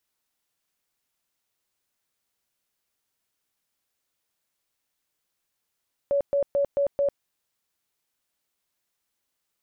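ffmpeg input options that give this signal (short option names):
-f lavfi -i "aevalsrc='0.106*sin(2*PI*564*mod(t,0.22))*lt(mod(t,0.22),55/564)':d=1.1:s=44100"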